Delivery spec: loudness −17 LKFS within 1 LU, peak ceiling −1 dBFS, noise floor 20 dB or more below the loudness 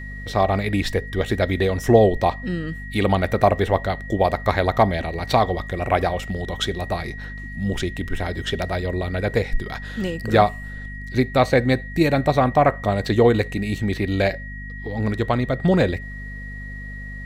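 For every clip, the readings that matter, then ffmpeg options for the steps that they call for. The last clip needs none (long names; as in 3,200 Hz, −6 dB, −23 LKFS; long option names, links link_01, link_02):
mains hum 50 Hz; hum harmonics up to 250 Hz; level of the hum −32 dBFS; interfering tone 1,900 Hz; level of the tone −36 dBFS; integrated loudness −21.5 LKFS; sample peak −2.5 dBFS; target loudness −17.0 LKFS
→ -af "bandreject=frequency=50:width_type=h:width=4,bandreject=frequency=100:width_type=h:width=4,bandreject=frequency=150:width_type=h:width=4,bandreject=frequency=200:width_type=h:width=4,bandreject=frequency=250:width_type=h:width=4"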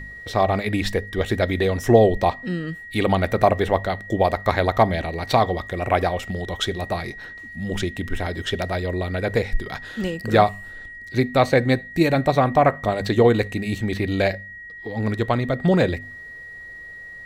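mains hum none found; interfering tone 1,900 Hz; level of the tone −36 dBFS
→ -af "bandreject=frequency=1900:width=30"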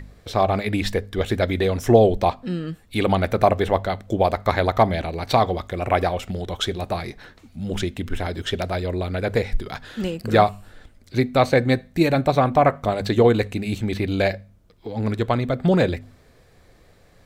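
interfering tone none found; integrated loudness −22.0 LKFS; sample peak −2.0 dBFS; target loudness −17.0 LKFS
→ -af "volume=5dB,alimiter=limit=-1dB:level=0:latency=1"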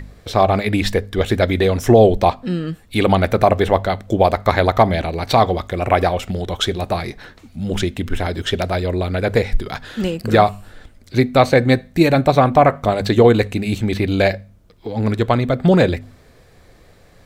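integrated loudness −17.5 LKFS; sample peak −1.0 dBFS; background noise floor −49 dBFS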